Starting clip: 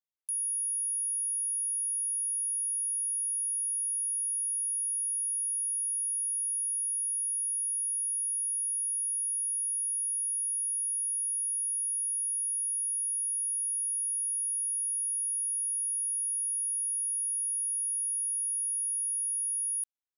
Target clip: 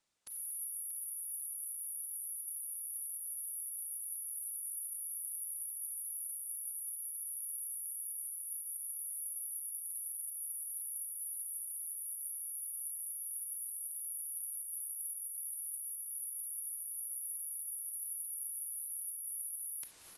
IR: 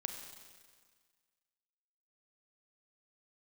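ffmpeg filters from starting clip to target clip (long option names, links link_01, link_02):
-filter_complex "[0:a]areverse,acompressor=mode=upward:threshold=-47dB:ratio=2.5,areverse,alimiter=level_in=8.5dB:limit=-24dB:level=0:latency=1:release=246,volume=-8.5dB,acontrast=30,asetrate=49501,aresample=44100,atempo=0.890899,aecho=1:1:633|1266|1899:0.2|0.0499|0.0125[link_01];[1:a]atrim=start_sample=2205,afade=type=out:start_time=0.39:duration=0.01,atrim=end_sample=17640[link_02];[link_01][link_02]afir=irnorm=-1:irlink=0,aresample=22050,aresample=44100,volume=12dB" -ar 48000 -c:a libopus -b:a 16k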